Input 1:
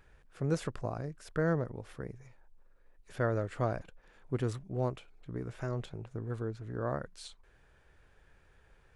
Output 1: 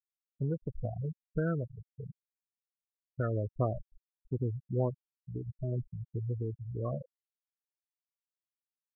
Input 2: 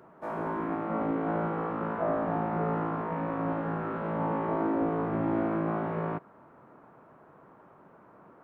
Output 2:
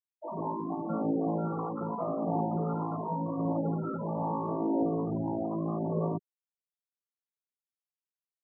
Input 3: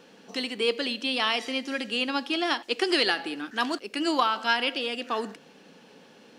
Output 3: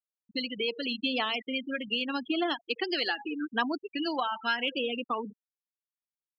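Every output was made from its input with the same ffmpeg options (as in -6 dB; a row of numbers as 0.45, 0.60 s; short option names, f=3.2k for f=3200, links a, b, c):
-af "afftfilt=real='re*gte(hypot(re,im),0.0631)':imag='im*gte(hypot(re,im),0.0631)':win_size=1024:overlap=0.75,acompressor=threshold=-32dB:ratio=2.5,aphaser=in_gain=1:out_gain=1:delay=1.4:decay=0.34:speed=0.83:type=triangular,volume=2dB"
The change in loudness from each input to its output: 0.0, -1.5, -4.0 LU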